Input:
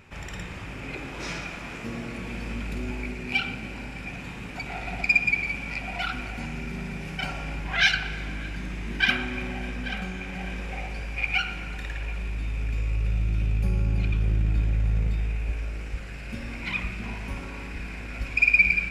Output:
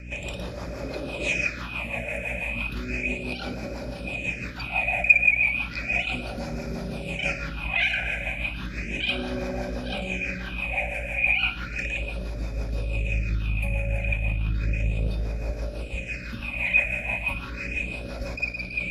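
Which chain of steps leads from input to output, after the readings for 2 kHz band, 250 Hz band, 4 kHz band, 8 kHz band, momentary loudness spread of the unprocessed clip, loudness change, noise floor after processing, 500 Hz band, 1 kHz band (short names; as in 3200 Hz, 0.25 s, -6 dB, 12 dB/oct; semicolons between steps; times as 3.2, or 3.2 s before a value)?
+1.5 dB, 0.0 dB, -1.5 dB, n/a, 15 LU, +1.5 dB, -36 dBFS, +6.5 dB, 0.0 dB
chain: low shelf 290 Hz -11 dB; in parallel at +2 dB: negative-ratio compressor -33 dBFS, ratio -1; on the sum: phaser stages 6, 0.34 Hz, lowest notch 310–2700 Hz; hum 60 Hz, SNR 10 dB; rotary speaker horn 6 Hz; small resonant body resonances 580/2500 Hz, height 13 dB, ringing for 40 ms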